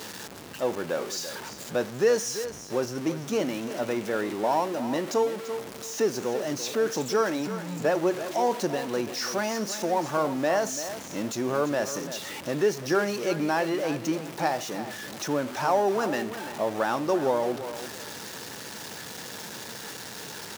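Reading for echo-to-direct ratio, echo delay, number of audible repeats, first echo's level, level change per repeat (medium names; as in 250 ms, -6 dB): -12.0 dB, 339 ms, 2, -12.0 dB, -13.0 dB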